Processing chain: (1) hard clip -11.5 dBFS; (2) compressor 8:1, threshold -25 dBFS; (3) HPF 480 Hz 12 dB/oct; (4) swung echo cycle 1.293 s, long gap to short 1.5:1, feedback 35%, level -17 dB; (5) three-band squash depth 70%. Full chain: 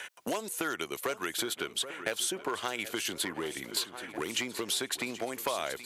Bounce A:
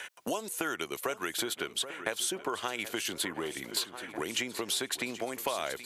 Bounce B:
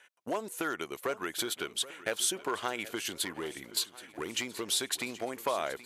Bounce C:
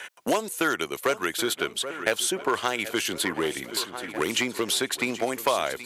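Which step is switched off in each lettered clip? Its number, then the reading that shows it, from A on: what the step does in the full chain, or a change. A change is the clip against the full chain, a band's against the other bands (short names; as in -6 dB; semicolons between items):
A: 1, distortion -18 dB; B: 5, momentary loudness spread change +3 LU; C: 2, mean gain reduction 6.0 dB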